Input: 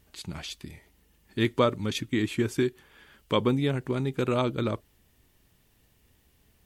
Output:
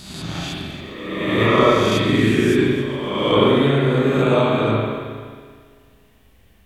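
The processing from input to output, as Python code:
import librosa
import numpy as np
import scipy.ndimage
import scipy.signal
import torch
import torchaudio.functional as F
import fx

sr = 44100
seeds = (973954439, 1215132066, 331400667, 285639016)

y = fx.spec_swells(x, sr, rise_s=1.46)
y = fx.echo_heads(y, sr, ms=137, heads='first and second', feedback_pct=47, wet_db=-17.0)
y = fx.rev_spring(y, sr, rt60_s=1.6, pass_ms=(36, 46), chirp_ms=50, drr_db=-6.5)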